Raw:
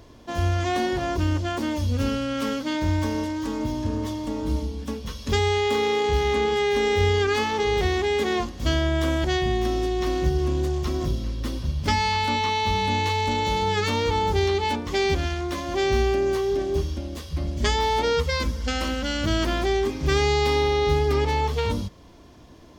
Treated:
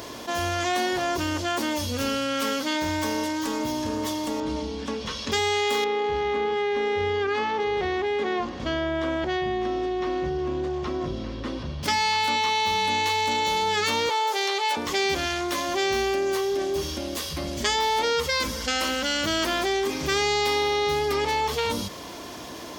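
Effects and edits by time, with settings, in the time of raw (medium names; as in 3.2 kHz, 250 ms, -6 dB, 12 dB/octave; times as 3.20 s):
4.40–5.32 s: distance through air 110 m
5.84–11.83 s: tape spacing loss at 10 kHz 30 dB
14.09–14.77 s: high-pass 460 Hz 24 dB/octave
whole clip: high-pass 560 Hz 6 dB/octave; treble shelf 8 kHz +7 dB; level flattener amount 50%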